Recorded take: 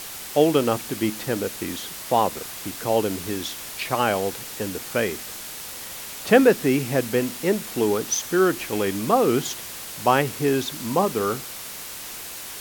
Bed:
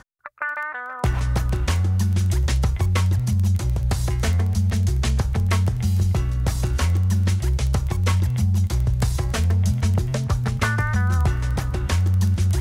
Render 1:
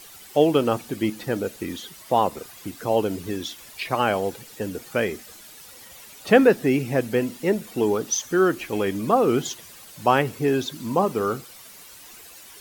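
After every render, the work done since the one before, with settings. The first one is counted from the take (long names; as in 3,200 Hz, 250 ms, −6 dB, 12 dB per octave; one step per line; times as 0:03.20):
broadband denoise 12 dB, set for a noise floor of −36 dBFS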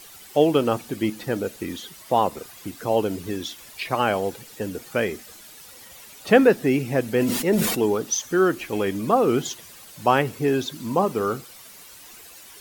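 0:07.05–0:07.86: level that may fall only so fast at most 37 dB per second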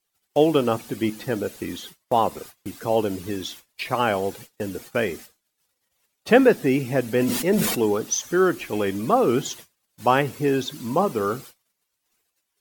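noise gate −40 dBFS, range −34 dB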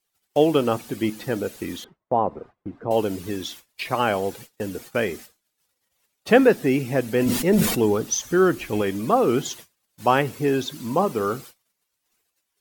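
0:01.84–0:02.91: low-pass filter 1,000 Hz
0:07.26–0:08.82: low-shelf EQ 140 Hz +10 dB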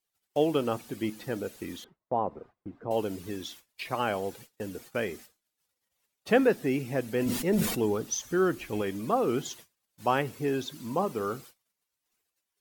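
level −7.5 dB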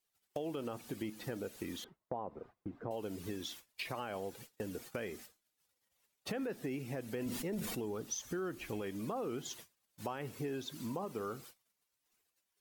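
brickwall limiter −20.5 dBFS, peak gain reduction 10 dB
downward compressor 4 to 1, threshold −38 dBFS, peak gain reduction 11.5 dB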